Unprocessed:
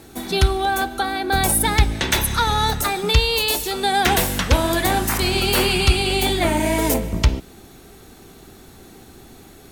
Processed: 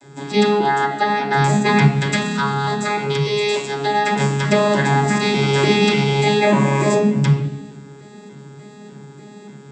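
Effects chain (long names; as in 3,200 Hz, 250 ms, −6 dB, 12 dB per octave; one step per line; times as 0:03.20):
vocoder with an arpeggio as carrier bare fifth, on C#3, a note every 296 ms
0:02.02–0:04.20: downward compressor, threshold −22 dBFS, peak gain reduction 8 dB
bass and treble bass +1 dB, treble +14 dB
convolution reverb RT60 0.65 s, pre-delay 3 ms, DRR −11.5 dB
level −7 dB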